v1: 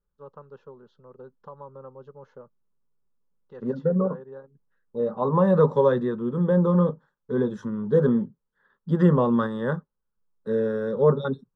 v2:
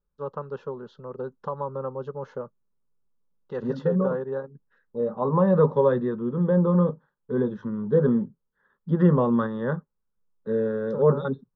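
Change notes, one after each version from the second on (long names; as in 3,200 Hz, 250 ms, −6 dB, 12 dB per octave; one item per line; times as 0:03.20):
first voice +11.5 dB
second voice: add high-frequency loss of the air 260 metres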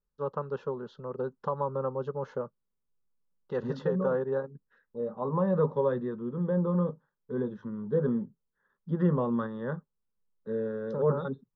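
second voice −7.0 dB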